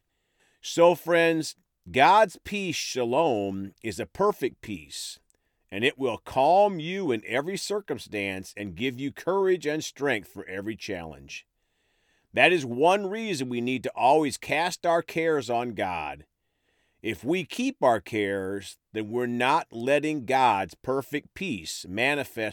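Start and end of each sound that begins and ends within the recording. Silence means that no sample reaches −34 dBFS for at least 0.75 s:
0:12.36–0:16.14

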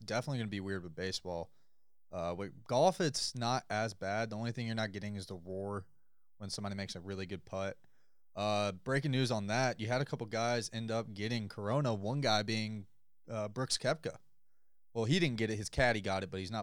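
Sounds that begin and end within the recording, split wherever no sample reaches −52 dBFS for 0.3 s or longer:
0:02.12–0:05.84
0:06.40–0:07.84
0:08.35–0:12.85
0:13.28–0:14.16

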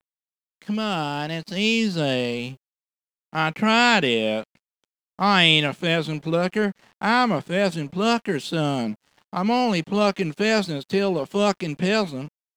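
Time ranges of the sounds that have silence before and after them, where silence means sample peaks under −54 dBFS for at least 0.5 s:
0:00.62–0:02.57

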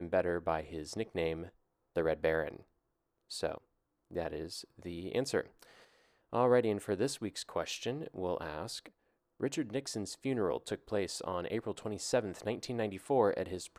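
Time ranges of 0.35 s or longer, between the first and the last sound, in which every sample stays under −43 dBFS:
0:01.48–0:01.96
0:02.59–0:03.31
0:03.58–0:04.11
0:05.63–0:06.33
0:08.86–0:09.41

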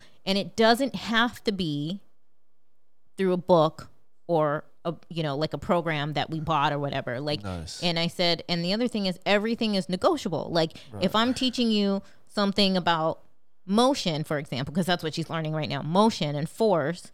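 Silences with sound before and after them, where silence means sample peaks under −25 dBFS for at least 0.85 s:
0:01.92–0:03.19

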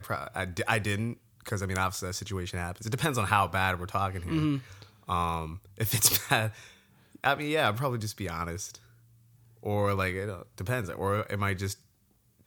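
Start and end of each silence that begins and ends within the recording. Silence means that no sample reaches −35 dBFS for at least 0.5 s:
0:06.50–0:07.24
0:08.75–0:09.65

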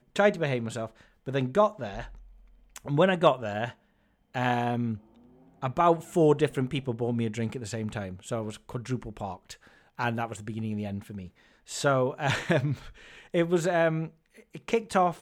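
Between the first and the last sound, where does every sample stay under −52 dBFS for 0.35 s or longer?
0:03.74–0:04.34

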